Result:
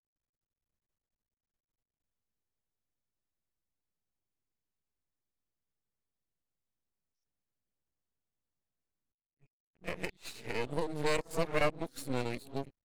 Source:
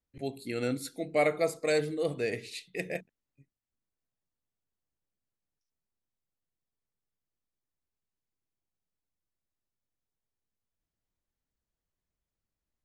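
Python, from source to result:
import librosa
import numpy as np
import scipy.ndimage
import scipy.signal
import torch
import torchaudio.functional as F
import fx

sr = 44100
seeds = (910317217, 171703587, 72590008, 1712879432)

y = np.flip(x).copy()
y = np.maximum(y, 0.0)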